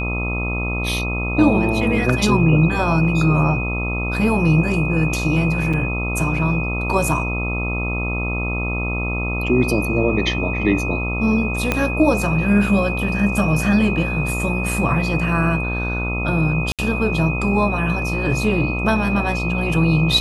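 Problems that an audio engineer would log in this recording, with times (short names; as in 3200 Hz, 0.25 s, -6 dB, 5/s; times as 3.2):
buzz 60 Hz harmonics 22 -24 dBFS
tone 2500 Hz -25 dBFS
5.73–5.74 gap 5.6 ms
11.72 pop -4 dBFS
16.72–16.79 gap 67 ms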